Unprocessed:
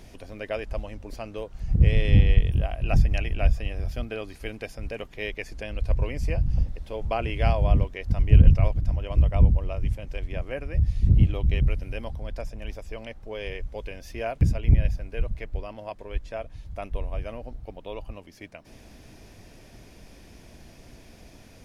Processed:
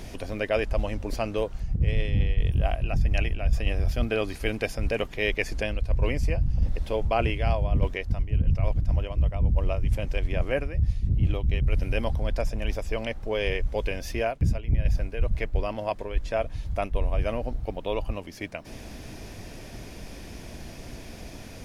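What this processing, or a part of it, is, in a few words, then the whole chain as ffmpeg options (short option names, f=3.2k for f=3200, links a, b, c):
compression on the reversed sound: -af "areverse,acompressor=threshold=-27dB:ratio=10,areverse,volume=8dB"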